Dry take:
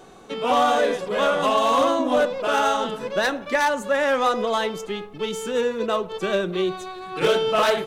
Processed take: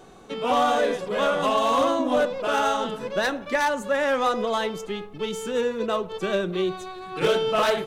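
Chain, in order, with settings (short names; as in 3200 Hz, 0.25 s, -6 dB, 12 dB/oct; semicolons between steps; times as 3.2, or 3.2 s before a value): low shelf 180 Hz +4.5 dB; gain -2.5 dB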